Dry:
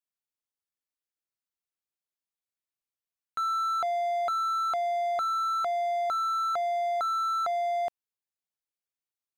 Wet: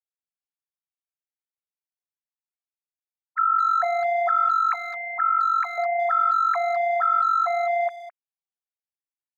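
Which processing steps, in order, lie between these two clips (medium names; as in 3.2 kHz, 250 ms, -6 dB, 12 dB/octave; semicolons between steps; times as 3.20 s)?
formants replaced by sine waves; 4.51–5.78 s: elliptic high-pass 830 Hz, stop band 40 dB; speakerphone echo 210 ms, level -13 dB; trim +6.5 dB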